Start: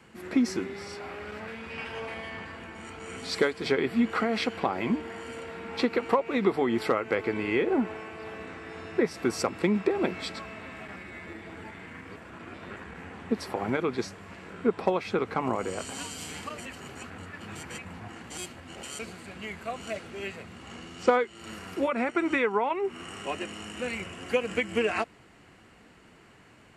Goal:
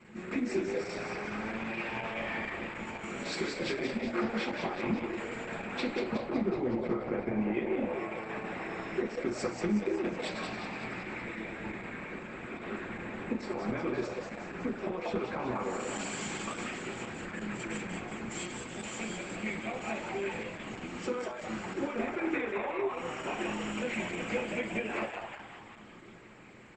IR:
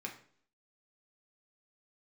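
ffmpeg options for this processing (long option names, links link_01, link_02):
-filter_complex "[0:a]asplit=3[link_01][link_02][link_03];[link_01]afade=type=out:start_time=5.95:duration=0.02[link_04];[link_02]aemphasis=mode=reproduction:type=riaa,afade=type=in:start_time=5.95:duration=0.02,afade=type=out:start_time=7.52:duration=0.02[link_05];[link_03]afade=type=in:start_time=7.52:duration=0.02[link_06];[link_04][link_05][link_06]amix=inputs=3:normalize=0,bandreject=frequency=5000:width=14,asettb=1/sr,asplit=3[link_07][link_08][link_09];[link_07]atrim=end=8.994[link_10];[link_08]atrim=start=8.99:end=9.48,asetpts=PTS-STARTPTS,afade=type=in:duration=0.004:curve=qsin,afade=type=out:start_time=0.486:duration=0.004:curve=qsin,asubboost=boost=11.5:cutoff=76[link_11];[link_09]atrim=start=9.476[link_12];[link_10][link_11]acrossfade=duration=0.004:curve1=hsin:curve2=qsin[link_13];[link_13][link_12]acrossfade=duration=0.004:curve1=qsin:curve2=hsin,acompressor=threshold=-32dB:ratio=6,asplit=9[link_14][link_15][link_16][link_17][link_18][link_19][link_20][link_21][link_22];[link_15]adelay=185,afreqshift=120,volume=-4.5dB[link_23];[link_16]adelay=370,afreqshift=240,volume=-9.4dB[link_24];[link_17]adelay=555,afreqshift=360,volume=-14.3dB[link_25];[link_18]adelay=740,afreqshift=480,volume=-19.1dB[link_26];[link_19]adelay=925,afreqshift=600,volume=-24dB[link_27];[link_20]adelay=1110,afreqshift=720,volume=-28.9dB[link_28];[link_21]adelay=1295,afreqshift=840,volume=-33.8dB[link_29];[link_22]adelay=1480,afreqshift=960,volume=-38.7dB[link_30];[link_14][link_23][link_24][link_25][link_26][link_27][link_28][link_29][link_30]amix=inputs=9:normalize=0[link_31];[1:a]atrim=start_sample=2205,afade=type=out:start_time=0.42:duration=0.01,atrim=end_sample=18963[link_32];[link_31][link_32]afir=irnorm=-1:irlink=0,volume=1.5dB" -ar 48000 -c:a libopus -b:a 10k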